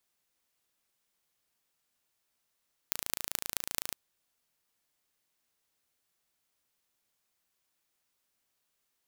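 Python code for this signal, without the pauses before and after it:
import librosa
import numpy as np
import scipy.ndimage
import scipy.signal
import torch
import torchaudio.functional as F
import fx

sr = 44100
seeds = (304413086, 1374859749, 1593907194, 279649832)

y = fx.impulse_train(sr, length_s=1.01, per_s=27.8, accent_every=6, level_db=-1.5)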